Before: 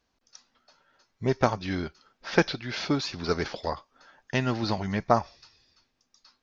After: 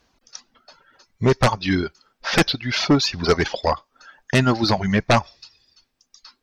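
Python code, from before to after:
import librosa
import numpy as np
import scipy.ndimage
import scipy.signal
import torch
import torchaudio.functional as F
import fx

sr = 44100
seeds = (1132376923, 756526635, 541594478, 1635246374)

y = fx.dereverb_blind(x, sr, rt60_s=1.3)
y = fx.fold_sine(y, sr, drive_db=13, ceiling_db=-5.0)
y = y * 10.0 ** (-4.5 / 20.0)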